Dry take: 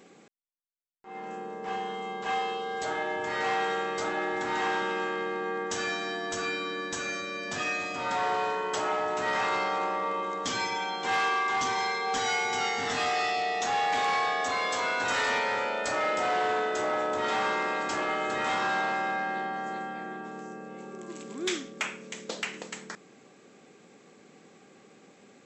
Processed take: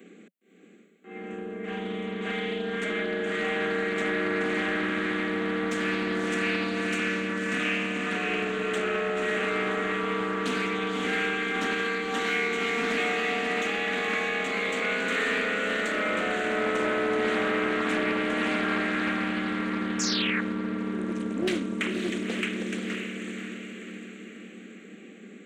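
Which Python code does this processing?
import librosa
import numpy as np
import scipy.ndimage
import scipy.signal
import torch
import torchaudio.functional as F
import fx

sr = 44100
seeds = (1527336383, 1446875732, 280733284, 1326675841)

p1 = scipy.signal.sosfilt(scipy.signal.butter(12, 180.0, 'highpass', fs=sr, output='sos'), x)
p2 = fx.low_shelf(p1, sr, hz=370.0, db=8.0)
p3 = fx.notch(p2, sr, hz=550.0, q=14.0)
p4 = 10.0 ** (-30.5 / 20.0) * np.tanh(p3 / 10.0 ** (-30.5 / 20.0))
p5 = p3 + (p4 * 10.0 ** (-5.5 / 20.0))
p6 = fx.fixed_phaser(p5, sr, hz=2200.0, stages=4)
p7 = fx.echo_diffused(p6, sr, ms=558, feedback_pct=53, wet_db=-3.0)
p8 = fx.spec_paint(p7, sr, seeds[0], shape='fall', start_s=19.99, length_s=0.42, low_hz=1600.0, high_hz=7000.0, level_db=-29.0)
y = fx.doppler_dist(p8, sr, depth_ms=0.29)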